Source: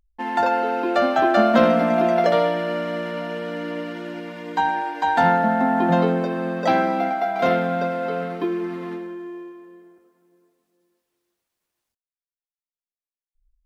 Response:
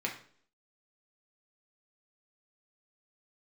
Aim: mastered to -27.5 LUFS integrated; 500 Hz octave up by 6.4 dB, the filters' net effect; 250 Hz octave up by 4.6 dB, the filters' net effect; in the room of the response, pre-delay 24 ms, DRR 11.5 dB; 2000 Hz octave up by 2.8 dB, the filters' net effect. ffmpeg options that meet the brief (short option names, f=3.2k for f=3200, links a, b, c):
-filter_complex "[0:a]equalizer=f=250:t=o:g=3.5,equalizer=f=500:t=o:g=7.5,equalizer=f=2k:t=o:g=3,asplit=2[a][b];[1:a]atrim=start_sample=2205,adelay=24[c];[b][c]afir=irnorm=-1:irlink=0,volume=-16dB[d];[a][d]amix=inputs=2:normalize=0,volume=-11.5dB"